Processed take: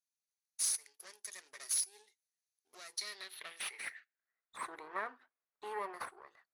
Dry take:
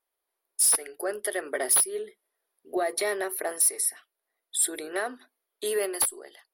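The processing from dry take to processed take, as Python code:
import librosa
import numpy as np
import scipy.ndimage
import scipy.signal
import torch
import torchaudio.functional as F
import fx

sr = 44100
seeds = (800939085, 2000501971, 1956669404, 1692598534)

y = fx.lower_of_two(x, sr, delay_ms=0.47)
y = fx.filter_sweep_bandpass(y, sr, from_hz=6100.0, to_hz=1100.0, start_s=2.89, end_s=4.53, q=3.1)
y = y * 10.0 ** (1.5 / 20.0)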